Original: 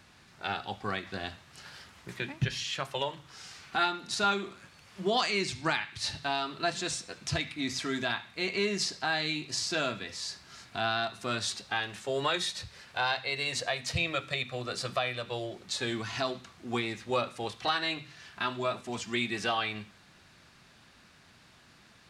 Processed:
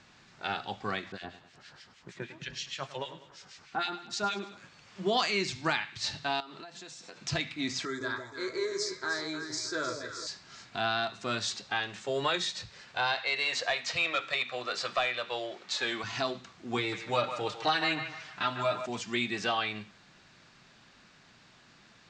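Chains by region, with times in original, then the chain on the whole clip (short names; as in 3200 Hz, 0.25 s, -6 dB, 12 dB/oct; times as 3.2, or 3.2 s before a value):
1.12–4.57 harmonic tremolo 6.4 Hz, depth 100%, crossover 1600 Hz + feedback echo 0.101 s, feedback 50%, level -14 dB
6.4–7.2 HPF 140 Hz + bell 850 Hz +5 dB 0.38 oct + compressor 16:1, threshold -42 dBFS
7.85–10.27 fixed phaser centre 750 Hz, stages 6 + doubler 16 ms -12.5 dB + echo with dull and thin repeats by turns 0.154 s, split 890 Hz, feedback 60%, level -4.5 dB
13.17–16.04 low shelf 260 Hz -10.5 dB + overdrive pedal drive 11 dB, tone 3200 Hz, clips at -17 dBFS
16.77–18.86 comb 6.6 ms + narrowing echo 0.151 s, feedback 49%, band-pass 1300 Hz, level -7 dB
whole clip: steep low-pass 7800 Hz 48 dB/oct; bell 75 Hz -11.5 dB 0.51 oct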